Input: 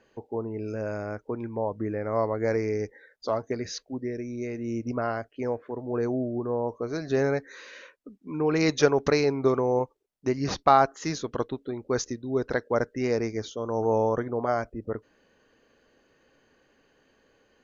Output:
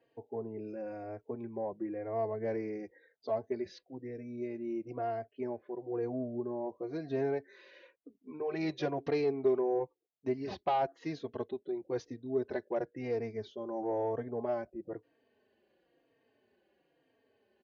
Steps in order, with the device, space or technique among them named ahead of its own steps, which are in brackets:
barber-pole flanger into a guitar amplifier (barber-pole flanger 3.8 ms −1 Hz; soft clipping −17 dBFS, distortion −18 dB; loudspeaker in its box 88–4,200 Hz, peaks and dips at 370 Hz +7 dB, 690 Hz +7 dB, 1,300 Hz −10 dB)
level −7.5 dB

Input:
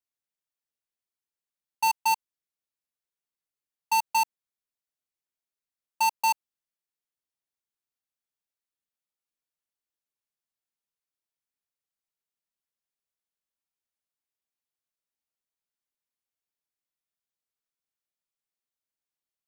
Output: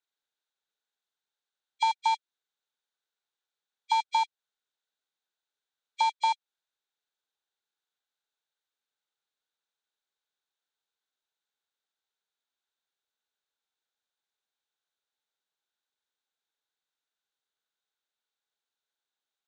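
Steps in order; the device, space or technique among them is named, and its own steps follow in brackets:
hearing aid with frequency lowering (hearing-aid frequency compression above 1,800 Hz 1.5 to 1; downward compressor 3 to 1, threshold −30 dBFS, peak gain reduction 8 dB; loudspeaker in its box 300–6,700 Hz, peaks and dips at 440 Hz +6 dB, 830 Hz +7 dB, 1,500 Hz +10 dB, 3,700 Hz +10 dB, 5,200 Hz −6 dB)

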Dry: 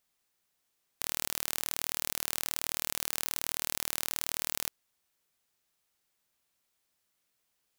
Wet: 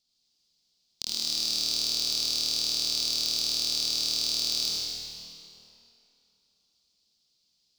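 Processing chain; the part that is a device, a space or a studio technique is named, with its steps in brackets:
drawn EQ curve 220 Hz 0 dB, 1,800 Hz −17 dB, 4,600 Hz +15 dB, 10,000 Hz −9 dB
swimming-pool hall (convolution reverb RT60 2.9 s, pre-delay 53 ms, DRR −5 dB; high-shelf EQ 5,300 Hz −4 dB)

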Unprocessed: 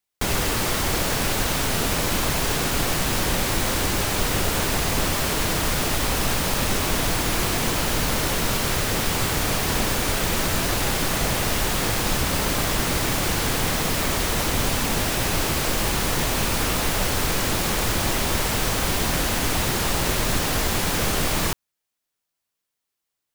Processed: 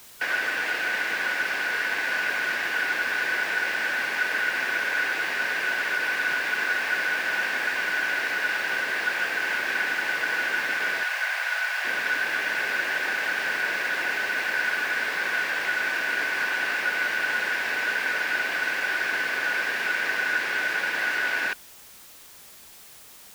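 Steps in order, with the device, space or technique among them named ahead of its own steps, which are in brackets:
split-band scrambled radio (band-splitting scrambler in four parts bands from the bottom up 2143; band-pass filter 350–3,100 Hz; white noise bed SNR 21 dB)
0:11.03–0:11.85: Chebyshev high-pass filter 680 Hz, order 3
level −2.5 dB

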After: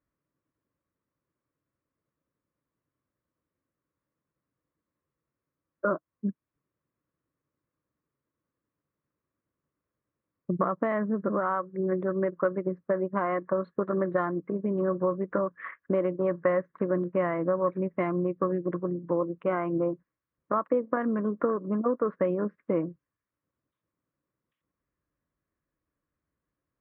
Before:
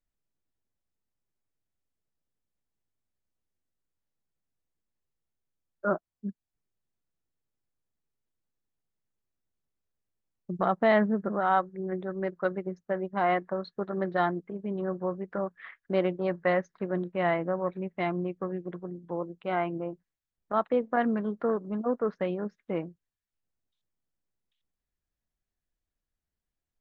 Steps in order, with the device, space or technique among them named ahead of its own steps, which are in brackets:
bass amplifier (downward compressor 6 to 1, threshold −32 dBFS, peak gain reduction 13 dB; loudspeaker in its box 69–2,100 Hz, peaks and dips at 140 Hz +5 dB, 300 Hz +8 dB, 540 Hz +6 dB, 780 Hz −9 dB, 1,100 Hz +9 dB)
level +6 dB

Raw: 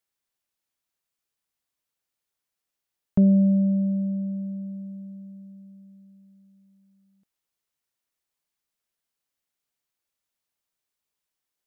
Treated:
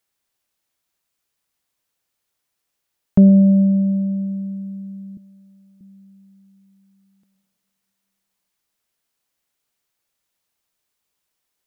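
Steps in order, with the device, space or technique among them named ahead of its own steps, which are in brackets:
compressed reverb return (on a send at −10 dB: convolution reverb RT60 1.8 s, pre-delay 107 ms + downward compressor, threshold −28 dBFS, peak gain reduction 13.5 dB)
0:05.17–0:05.81: on the sum: high-pass filter 320 Hz 12 dB per octave
level +7.5 dB

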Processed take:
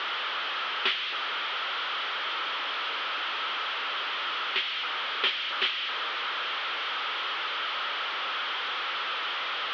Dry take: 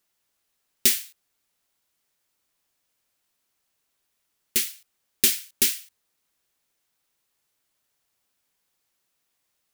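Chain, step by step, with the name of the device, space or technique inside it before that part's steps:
digital answering machine (band-pass filter 370–3,200 Hz; linear delta modulator 32 kbit/s, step −31 dBFS; loudspeaker in its box 480–3,700 Hz, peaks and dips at 690 Hz −5 dB, 1,300 Hz +9 dB, 3,200 Hz +8 dB)
level +3.5 dB

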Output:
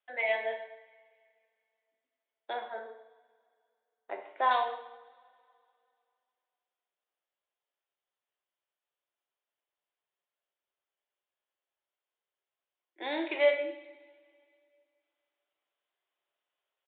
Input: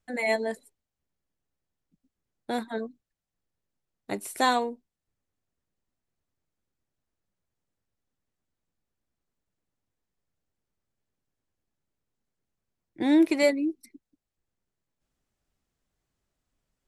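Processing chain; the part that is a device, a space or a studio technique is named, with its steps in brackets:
0:02.53–0:04.51: low-pass filter 1,600 Hz 12 dB per octave
coupled-rooms reverb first 0.75 s, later 2.6 s, from −21 dB, DRR 2 dB
musical greeting card (downsampling to 8,000 Hz; high-pass filter 500 Hz 24 dB per octave; parametric band 3,100 Hz +5 dB 0.46 octaves)
level −3.5 dB

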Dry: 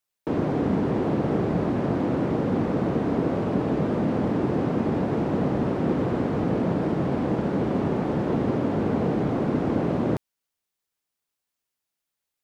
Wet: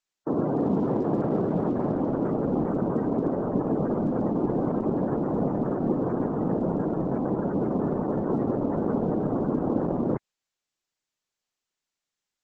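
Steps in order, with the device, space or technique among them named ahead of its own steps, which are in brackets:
noise-suppressed video call (high-pass filter 140 Hz 12 dB per octave; gate on every frequency bin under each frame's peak −25 dB strong; Opus 12 kbit/s 48,000 Hz)

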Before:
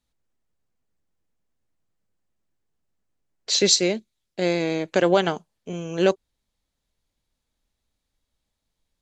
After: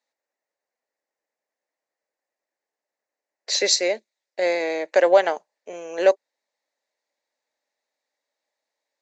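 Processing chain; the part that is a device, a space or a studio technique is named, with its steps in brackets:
phone speaker on a table (loudspeaker in its box 360–7,300 Hz, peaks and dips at 370 Hz −5 dB, 580 Hz +7 dB, 840 Hz +4 dB, 1,300 Hz −4 dB, 1,900 Hz +8 dB, 3,200 Hz −9 dB)

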